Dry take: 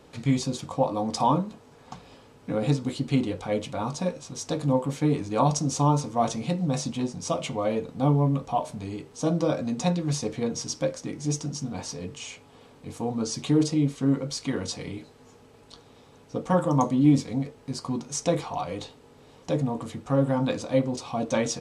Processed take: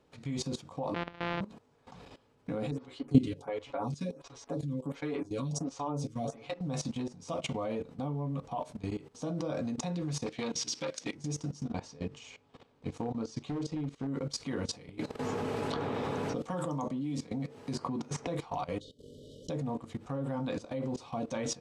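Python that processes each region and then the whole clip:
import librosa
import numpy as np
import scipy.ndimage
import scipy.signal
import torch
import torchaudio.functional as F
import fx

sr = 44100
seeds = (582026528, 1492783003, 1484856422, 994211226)

y = fx.chain(x, sr, fx.sample_sort(block=256),
    fx.lowpass(hz=3500.0, slope=24),
    fx.low_shelf(hz=430.0, db=-10.5), at=(0.94, 1.41))
y = fx.chain(y, sr, fx.comb(ms=7.2, depth=0.68),
    fx.stagger_phaser(hz=1.4), at=(2.71, 6.61))
y = fx.chain(y, sr, fx.weighting(curve='D'),
    fx.transformer_sat(knee_hz=1300.0), at=(10.26, 11.15))
y = fx.chain(y, sr, fx.lowpass(hz=7200.0, slope=12),
    fx.transient(attack_db=8, sustain_db=-4),
    fx.overload_stage(gain_db=16.0), at=(11.65, 14.07))
y = fx.chain(y, sr, fx.highpass(hz=93.0, slope=12),
    fx.band_squash(depth_pct=100), at=(14.99, 18.27))
y = fx.chain(y, sr, fx.brickwall_bandstop(low_hz=630.0, high_hz=2900.0),
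    fx.pre_swell(db_per_s=33.0), at=(18.8, 19.5))
y = fx.high_shelf(y, sr, hz=6900.0, db=-6.5)
y = fx.level_steps(y, sr, step_db=17)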